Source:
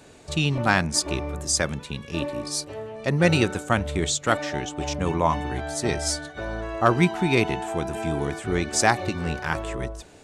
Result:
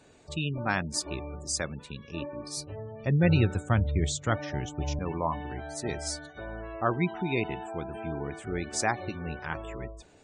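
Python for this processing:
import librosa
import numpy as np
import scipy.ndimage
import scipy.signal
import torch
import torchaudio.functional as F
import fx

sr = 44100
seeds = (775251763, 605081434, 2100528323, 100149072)

y = fx.spec_gate(x, sr, threshold_db=-25, keep='strong')
y = fx.peak_eq(y, sr, hz=94.0, db=13.0, octaves=1.7, at=(2.57, 4.99))
y = F.gain(torch.from_numpy(y), -8.0).numpy()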